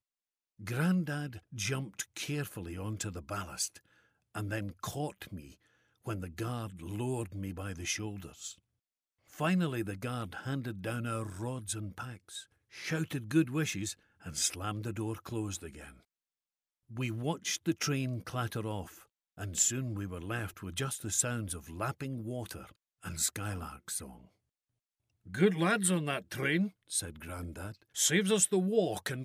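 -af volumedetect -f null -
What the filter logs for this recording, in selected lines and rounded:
mean_volume: -35.7 dB
max_volume: -13.6 dB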